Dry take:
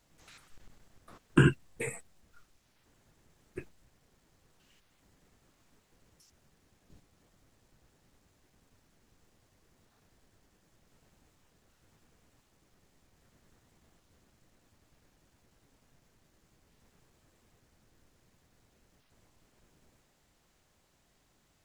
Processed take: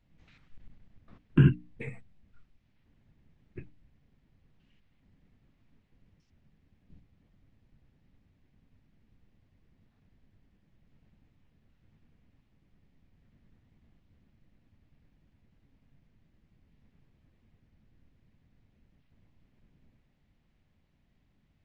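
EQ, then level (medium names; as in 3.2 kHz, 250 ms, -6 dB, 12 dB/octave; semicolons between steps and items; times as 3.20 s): tape spacing loss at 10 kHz 40 dB; high-order bell 720 Hz -10 dB 2.5 oct; hum notches 60/120/180/240/300 Hz; +5.0 dB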